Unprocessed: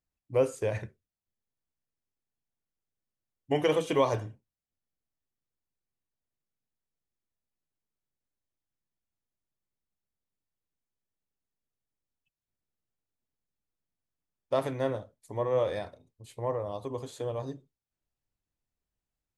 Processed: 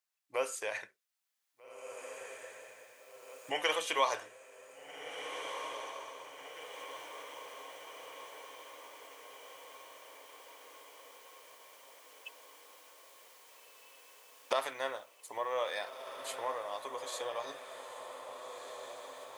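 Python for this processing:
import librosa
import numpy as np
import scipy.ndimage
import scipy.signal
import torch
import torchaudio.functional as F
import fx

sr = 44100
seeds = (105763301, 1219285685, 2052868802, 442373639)

y = fx.recorder_agc(x, sr, target_db=-23.0, rise_db_per_s=11.0, max_gain_db=30)
y = scipy.signal.sosfilt(scipy.signal.butter(2, 1100.0, 'highpass', fs=sr, output='sos'), y)
y = fx.echo_diffused(y, sr, ms=1683, feedback_pct=63, wet_db=-8.0)
y = y * 10.0 ** (4.0 / 20.0)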